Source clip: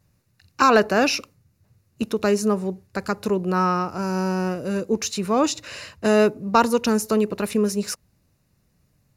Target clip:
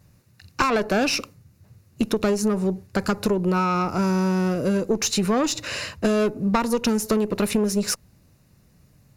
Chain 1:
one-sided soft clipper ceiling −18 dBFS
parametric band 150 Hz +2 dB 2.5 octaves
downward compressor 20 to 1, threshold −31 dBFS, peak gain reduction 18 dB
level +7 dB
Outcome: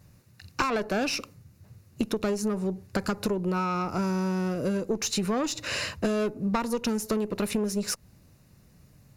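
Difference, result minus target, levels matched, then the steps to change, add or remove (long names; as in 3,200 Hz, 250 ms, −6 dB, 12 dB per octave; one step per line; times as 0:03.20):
downward compressor: peak gain reduction +6 dB
change: downward compressor 20 to 1, threshold −24.5 dBFS, peak gain reduction 11.5 dB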